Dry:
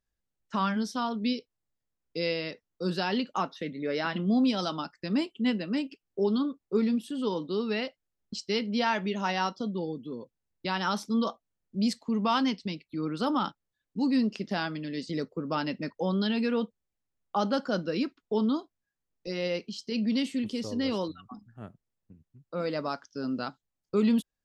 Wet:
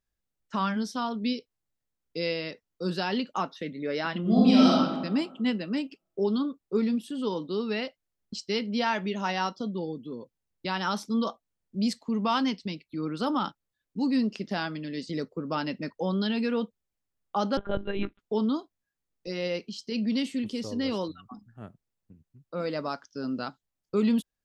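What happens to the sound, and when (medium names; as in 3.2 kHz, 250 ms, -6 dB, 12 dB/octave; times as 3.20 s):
4.21–4.74 s: reverb throw, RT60 1.3 s, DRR -6 dB
17.57–18.19 s: monotone LPC vocoder at 8 kHz 200 Hz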